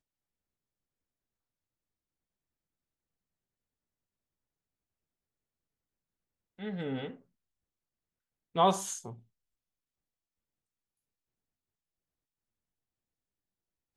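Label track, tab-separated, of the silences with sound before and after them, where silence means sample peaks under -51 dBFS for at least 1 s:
7.160000	8.550000	silence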